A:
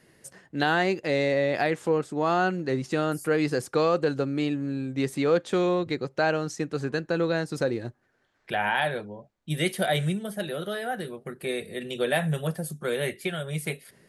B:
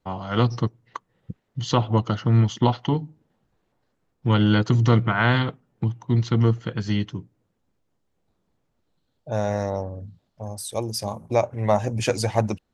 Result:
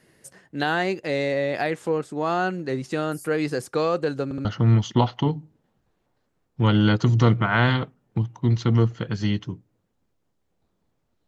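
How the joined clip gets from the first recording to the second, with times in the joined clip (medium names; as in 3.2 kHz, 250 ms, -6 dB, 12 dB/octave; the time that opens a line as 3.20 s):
A
4.24 s: stutter in place 0.07 s, 3 plays
4.45 s: go over to B from 2.11 s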